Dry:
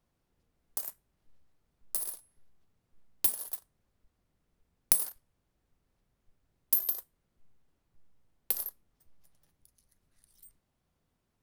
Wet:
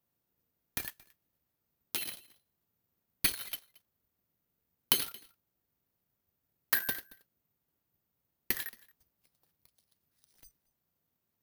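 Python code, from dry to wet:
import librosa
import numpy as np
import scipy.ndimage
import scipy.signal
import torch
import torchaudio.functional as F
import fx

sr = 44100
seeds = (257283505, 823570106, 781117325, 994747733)

y = scipy.signal.sosfilt(scipy.signal.butter(2, 88.0, 'highpass', fs=sr, output='sos'), x)
y = y + 10.0 ** (-23.0 / 20.0) * np.pad(y, (int(225 * sr / 1000.0), 0))[:len(y)]
y = (np.kron(y[::3], np.eye(3)[0]) * 3)[:len(y)]
y = F.gain(torch.from_numpy(y), -7.0).numpy()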